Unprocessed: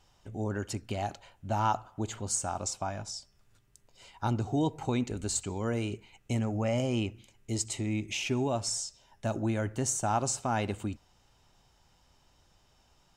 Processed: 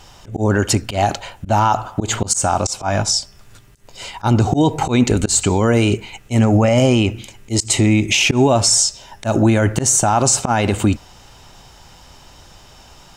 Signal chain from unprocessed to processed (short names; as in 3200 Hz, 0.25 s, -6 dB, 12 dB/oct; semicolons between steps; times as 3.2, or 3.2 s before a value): low shelf 450 Hz -2 dB; auto swell 0.134 s; maximiser +26.5 dB; gain -4 dB